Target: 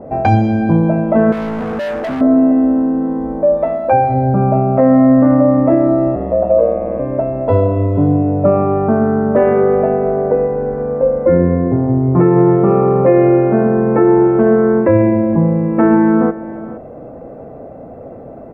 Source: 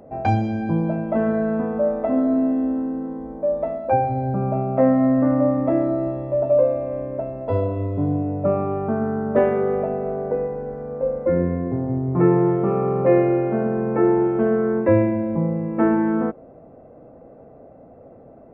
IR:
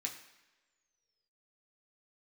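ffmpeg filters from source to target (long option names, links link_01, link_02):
-filter_complex "[0:a]asettb=1/sr,asplit=3[link_01][link_02][link_03];[link_01]atrim=end=3.574[link_04];[link_02]atrim=start=3.57:end=4.14,asetpts=PTS-STARTPTS,afade=type=in:duration=0.004:curve=qsin,afade=type=out:start_time=0.566:duration=0.004:curve=qsin,tiltshelf=frequency=970:gain=-3.5[link_05];[link_03]atrim=start=4.136[link_06];[link_04][link_05]acrossfade=duration=0.004:curve1=hsin:curve2=qsin[link_07];[link_07][link_06]acrossfade=duration=0.004:curve1=qsin:curve2=hsin,aecho=1:1:467:0.1,asplit=2[link_08][link_09];[link_09]acompressor=threshold=-30dB:ratio=6,volume=-1.5dB[link_10];[link_08][link_10]amix=inputs=2:normalize=0,asettb=1/sr,asplit=3[link_11][link_12][link_13];[link_11]atrim=end=1.324[link_14];[link_12]atrim=start=1.32:end=2.21,asetpts=PTS-STARTPTS,afade=type=in:duration=0.004:curve=qsin,afade=type=out:start_time=0.886:duration=0.004:curve=qsin,asoftclip=type=hard:threshold=-26dB[link_15];[link_13]atrim=start=2.206[link_16];[link_14][link_15]acrossfade=duration=0.004:curve1=hsin:curve2=qsin[link_17];[link_17][link_16]acrossfade=duration=0.004:curve1=qsin:curve2=hsin,asettb=1/sr,asplit=3[link_18][link_19][link_20];[link_18]atrim=end=6.154[link_21];[link_19]atrim=start=6.15:end=7,asetpts=PTS-STARTPTS,afade=type=in:duration=0.004:curve=qsin,afade=type=out:start_time=0.846:duration=0.004:curve=qsin,aeval=exprs='val(0)*sin(2*PI*57*n/s)':channel_layout=same[link_22];[link_20]atrim=start=6.996[link_23];[link_21][link_22]acrossfade=duration=0.004:curve1=hsin:curve2=qsin[link_24];[link_24][link_23]acrossfade=duration=0.004:curve1=qsin:curve2=hsin,alimiter=level_in=8.5dB:limit=-1dB:release=50:level=0:latency=1,adynamicequalizer=threshold=0.0251:dfrequency=2500:dqfactor=0.7:tfrequency=2500:tqfactor=0.7:attack=5:release=100:ratio=0.375:range=3.5:mode=cutabove:tftype=highshelf,volume=-1dB"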